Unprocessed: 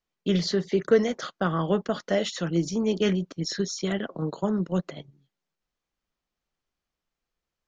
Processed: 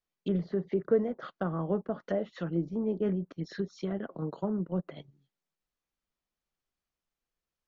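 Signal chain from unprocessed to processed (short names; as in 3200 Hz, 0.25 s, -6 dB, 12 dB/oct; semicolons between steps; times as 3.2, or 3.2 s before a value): treble ducked by the level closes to 940 Hz, closed at -23 dBFS; gain -5.5 dB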